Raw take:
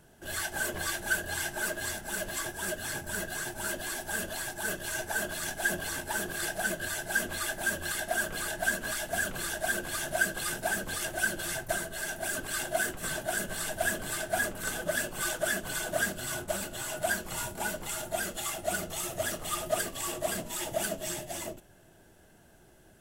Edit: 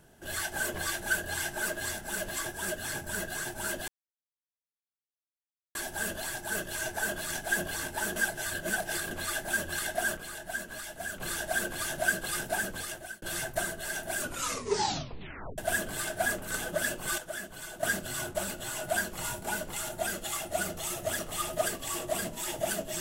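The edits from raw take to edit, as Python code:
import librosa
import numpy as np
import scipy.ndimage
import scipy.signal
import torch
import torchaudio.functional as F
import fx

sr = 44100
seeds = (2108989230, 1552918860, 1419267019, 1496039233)

y = fx.edit(x, sr, fx.insert_silence(at_s=3.88, length_s=1.87),
    fx.reverse_span(start_s=6.29, length_s=0.95),
    fx.clip_gain(start_s=8.3, length_s=1.03, db=-7.0),
    fx.fade_out_span(start_s=10.55, length_s=0.8, curve='qsin'),
    fx.tape_stop(start_s=12.33, length_s=1.38),
    fx.clip_gain(start_s=15.31, length_s=0.65, db=-8.5), tone=tone)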